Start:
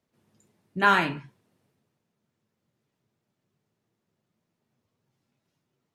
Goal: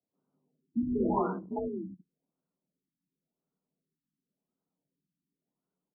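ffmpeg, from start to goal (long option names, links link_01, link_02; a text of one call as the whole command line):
ffmpeg -i in.wav -filter_complex "[0:a]asplit=2[link_01][link_02];[link_02]aecho=0:1:187|196|319|744:0.531|0.473|0.119|0.355[link_03];[link_01][link_03]amix=inputs=2:normalize=0,afreqshift=47,afwtdn=0.01,asplit=2[link_04][link_05];[link_05]aeval=exprs='(mod(9.44*val(0)+1,2)-1)/9.44':channel_layout=same,volume=-5.5dB[link_06];[link_04][link_06]amix=inputs=2:normalize=0,afftfilt=real='re*lt(b*sr/1024,330*pow(1600/330,0.5+0.5*sin(2*PI*0.92*pts/sr)))':imag='im*lt(b*sr/1024,330*pow(1600/330,0.5+0.5*sin(2*PI*0.92*pts/sr)))':win_size=1024:overlap=0.75" out.wav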